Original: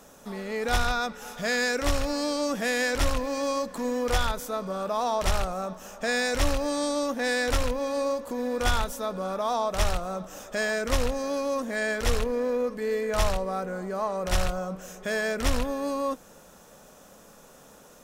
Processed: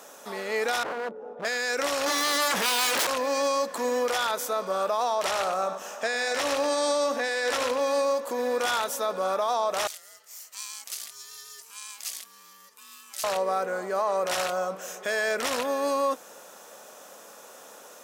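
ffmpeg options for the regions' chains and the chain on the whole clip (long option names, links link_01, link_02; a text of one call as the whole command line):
ffmpeg -i in.wav -filter_complex "[0:a]asettb=1/sr,asplit=3[link_01][link_02][link_03];[link_01]atrim=end=0.834[link_04];[link_02]atrim=start=0.83:end=1.45,asetpts=PTS-STARTPTS,afade=type=in:duration=0.004:curve=qsin,afade=type=out:start_time=0.616:duration=0.004:curve=qsin,lowpass=frequency=440:width_type=q:width=1.9,aeval=exprs='0.0335*(abs(mod(val(0)/0.0335+3,4)-2)-1)':channel_layout=same[link_05];[link_03]atrim=start=1.446[link_06];[link_04][link_05]acrossfade=duration=0.004:curve1=hsin:curve2=qsin[link_07];[link_07][link_06]acrossfade=duration=0.004:curve1=qsin:curve2=hsin,asettb=1/sr,asplit=3[link_08][link_09][link_10];[link_08]atrim=end=2.064[link_11];[link_09]atrim=start=2.06:end=3.07,asetpts=PTS-STARTPTS,afade=type=in:duration=0.004:curve=qsin,afade=type=out:start_time=1.006:duration=0.004:curve=qsin,equalizer=frequency=650:width_type=o:width=0.41:gain=-3.5,aeval=exprs='0.237*sin(PI/2*7.94*val(0)/0.237)':channel_layout=same[link_12];[link_10]atrim=start=3.066[link_13];[link_11][link_12]acrossfade=duration=0.004:curve1=hsin:curve2=qsin[link_14];[link_14][link_13]acrossfade=duration=0.004:curve1=qsin:curve2=hsin,asettb=1/sr,asplit=3[link_15][link_16][link_17];[link_15]atrim=end=5.254[link_18];[link_16]atrim=start=5.25:end=7.8,asetpts=PTS-STARTPTS,afade=type=in:duration=0.004:curve=qsin,afade=type=out:start_time=2.546:duration=0.004:curve=qsin,highshelf=frequency=11000:gain=-8,aecho=1:1:95:0.316,atrim=end_sample=112455[link_19];[link_17]atrim=start=7.796[link_20];[link_18][link_19]acrossfade=duration=0.004:curve1=hsin:curve2=qsin[link_21];[link_21][link_20]acrossfade=duration=0.004:curve1=qsin:curve2=hsin,asettb=1/sr,asplit=3[link_22][link_23][link_24];[link_22]atrim=end=9.874[link_25];[link_23]atrim=start=9.87:end=13.24,asetpts=PTS-STARTPTS,afade=type=in:duration=0.004:curve=qsin,afade=type=out:start_time=3.366:duration=0.004:curve=qsin,aderivative,acrossover=split=140|3000[link_26][link_27][link_28];[link_27]acompressor=threshold=-59dB:ratio=2:attack=3.2:release=140:knee=2.83:detection=peak[link_29];[link_26][link_29][link_28]amix=inputs=3:normalize=0,aeval=exprs='val(0)*sin(2*PI*680*n/s)':channel_layout=same[link_30];[link_24]atrim=start=13.236[link_31];[link_25][link_30]acrossfade=duration=0.004:curve1=hsin:curve2=qsin[link_32];[link_32][link_31]acrossfade=duration=0.004:curve1=qsin:curve2=hsin,highpass=450,alimiter=limit=-23.5dB:level=0:latency=1:release=33,volume=6dB" out.wav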